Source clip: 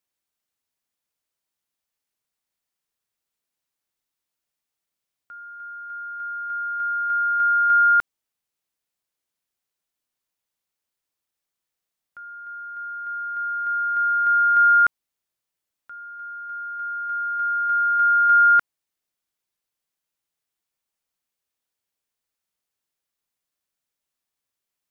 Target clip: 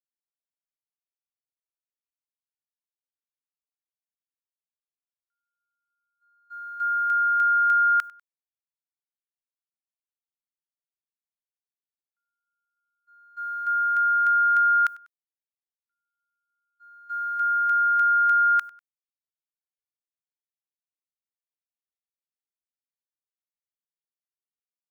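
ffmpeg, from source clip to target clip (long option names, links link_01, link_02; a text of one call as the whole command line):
ffmpeg -i in.wav -filter_complex "[0:a]highpass=1300,agate=range=-50dB:threshold=-29dB:ratio=16:detection=peak,acompressor=threshold=-21dB:ratio=6,crystalizer=i=6.5:c=0,asplit=2[link_01][link_02];[link_02]aecho=0:1:98|196:0.0794|0.0278[link_03];[link_01][link_03]amix=inputs=2:normalize=0,volume=-2dB" out.wav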